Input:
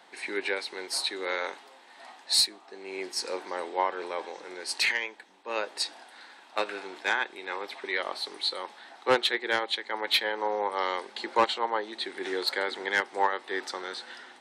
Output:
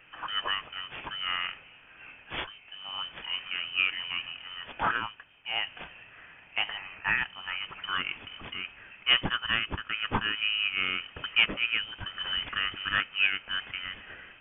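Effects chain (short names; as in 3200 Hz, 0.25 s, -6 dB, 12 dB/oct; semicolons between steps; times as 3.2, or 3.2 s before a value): CVSD 64 kbps; 6.77–7.18 resonant low shelf 530 Hz -11.5 dB, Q 1.5; inverted band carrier 3400 Hz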